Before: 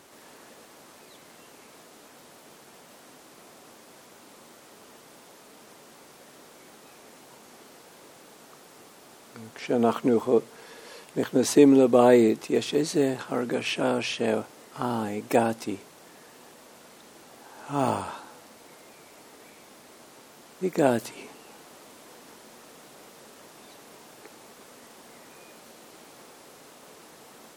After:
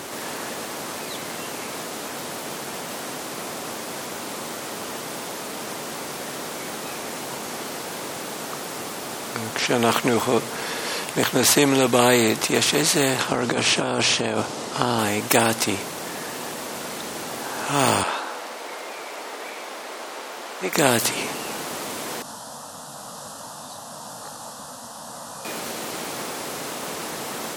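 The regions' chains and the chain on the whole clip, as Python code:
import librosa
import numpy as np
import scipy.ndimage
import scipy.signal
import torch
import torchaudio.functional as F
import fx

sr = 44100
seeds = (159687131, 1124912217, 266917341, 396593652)

y = fx.chain(x, sr, fx.lowpass(hz=7500.0, slope=12),
    fx.peak_eq(hz=1900.0, db=-6.5, octaves=1.2),
    fx.over_compress(threshold_db=-30.0, ratio=-1.0), at=(13.27, 14.99))
y = fx.chain(y, sr, fx.highpass(hz=480.0, slope=12),
    fx.high_shelf(hz=5700.0, db=-11.0), at=(18.03, 20.73))
y = fx.chain(y, sr, fx.steep_lowpass(hz=12000.0, slope=48),
    fx.fixed_phaser(hz=920.0, stages=4),
    fx.detune_double(cents=33), at=(22.22, 25.45))
y = scipy.signal.sosfilt(scipy.signal.butter(2, 63.0, 'highpass', fs=sr, output='sos'), y)
y = fx.spectral_comp(y, sr, ratio=2.0)
y = F.gain(torch.from_numpy(y), 4.0).numpy()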